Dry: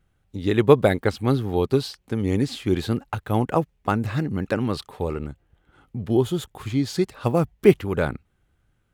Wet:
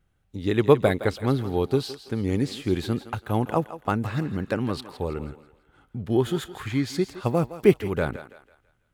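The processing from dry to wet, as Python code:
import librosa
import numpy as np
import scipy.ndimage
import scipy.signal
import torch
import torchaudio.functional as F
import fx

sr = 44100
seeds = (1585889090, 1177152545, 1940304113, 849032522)

y = fx.peak_eq(x, sr, hz=1700.0, db=11.5, octaves=0.92, at=(6.12, 6.86))
y = fx.echo_thinned(y, sr, ms=165, feedback_pct=39, hz=420.0, wet_db=-12)
y = y * librosa.db_to_amplitude(-2.5)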